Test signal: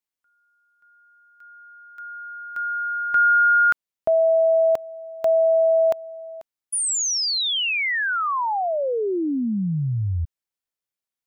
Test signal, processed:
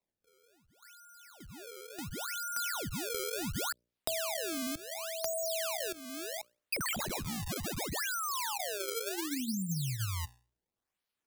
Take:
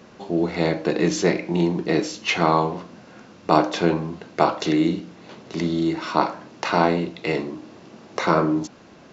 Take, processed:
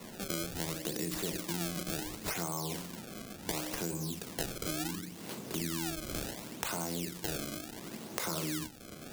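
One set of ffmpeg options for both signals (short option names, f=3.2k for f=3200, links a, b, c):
-filter_complex "[0:a]acompressor=threshold=-23dB:ratio=2:attack=6.4:release=102:knee=1,equalizer=f=190:t=o:w=2.9:g=5.5,bandreject=f=60:t=h:w=6,bandreject=f=120:t=h:w=6,bandreject=f=180:t=h:w=6,bandreject=f=240:t=h:w=6,bandreject=f=300:t=h:w=6,bandreject=f=360:t=h:w=6,bandreject=f=420:t=h:w=6,bandreject=f=480:t=h:w=6,bandreject=f=540:t=h:w=6,bandreject=f=600:t=h:w=6,acrusher=samples=27:mix=1:aa=0.000001:lfo=1:lforange=43.2:lforate=0.7,highshelf=f=3.5k:g=10.5,acrossover=split=120|3100[a][b][c];[a]acompressor=threshold=-41dB:ratio=4[d];[b]acompressor=threshold=-35dB:ratio=4[e];[c]acompressor=threshold=-33dB:ratio=4[f];[d][e][f]amix=inputs=3:normalize=0,volume=-4dB"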